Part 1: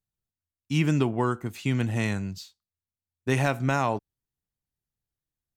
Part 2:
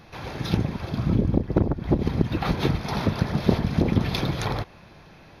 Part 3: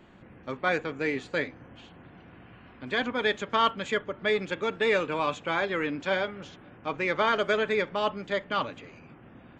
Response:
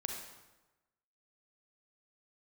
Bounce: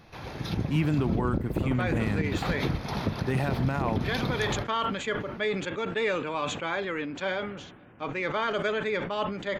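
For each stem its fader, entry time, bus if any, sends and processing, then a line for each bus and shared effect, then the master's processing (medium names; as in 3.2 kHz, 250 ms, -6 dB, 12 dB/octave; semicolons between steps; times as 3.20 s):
-0.5 dB, 0.00 s, no send, peaking EQ 5.8 kHz -13.5 dB 1.2 oct
-4.5 dB, 0.00 s, no send, none
-3.0 dB, 1.15 s, no send, band-stop 5.2 kHz, Q 20; decay stretcher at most 57 dB/s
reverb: none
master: peak limiter -17 dBFS, peak gain reduction 11 dB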